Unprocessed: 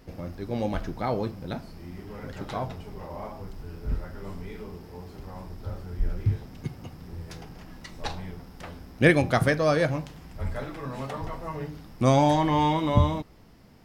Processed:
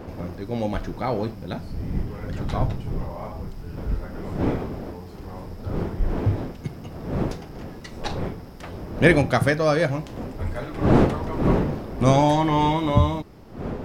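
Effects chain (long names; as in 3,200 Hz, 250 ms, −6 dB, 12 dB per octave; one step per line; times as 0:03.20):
wind on the microphone 430 Hz −31 dBFS, from 0:01.33 130 Hz, from 0:03.76 370 Hz
level +2.5 dB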